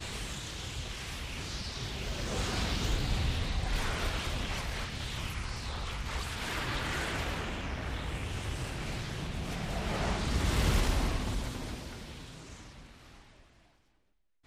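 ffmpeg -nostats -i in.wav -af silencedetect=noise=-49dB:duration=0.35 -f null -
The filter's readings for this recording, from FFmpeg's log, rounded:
silence_start: 13.42
silence_end: 14.46 | silence_duration: 1.04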